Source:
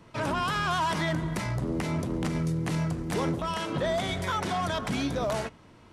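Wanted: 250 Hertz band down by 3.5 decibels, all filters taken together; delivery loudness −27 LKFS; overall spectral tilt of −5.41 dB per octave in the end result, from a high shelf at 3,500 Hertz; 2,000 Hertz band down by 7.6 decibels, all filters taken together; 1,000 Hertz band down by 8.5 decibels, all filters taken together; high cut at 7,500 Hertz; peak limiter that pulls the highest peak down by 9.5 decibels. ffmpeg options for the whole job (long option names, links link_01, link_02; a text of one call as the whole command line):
ffmpeg -i in.wav -af "lowpass=7500,equalizer=frequency=250:width_type=o:gain=-5,equalizer=frequency=1000:width_type=o:gain=-9,equalizer=frequency=2000:width_type=o:gain=-5.5,highshelf=frequency=3500:gain=-3,volume=11dB,alimiter=limit=-18.5dB:level=0:latency=1" out.wav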